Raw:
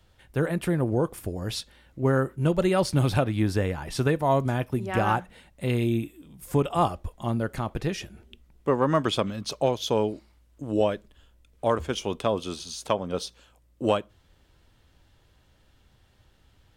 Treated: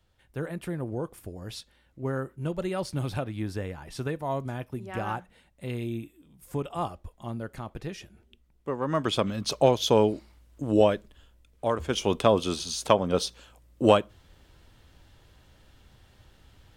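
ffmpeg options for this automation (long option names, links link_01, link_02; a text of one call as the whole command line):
ffmpeg -i in.wav -af "volume=11.5dB,afade=type=in:start_time=8.79:duration=0.76:silence=0.266073,afade=type=out:start_time=10.73:duration=1.03:silence=0.446684,afade=type=in:start_time=11.76:duration=0.34:silence=0.398107" out.wav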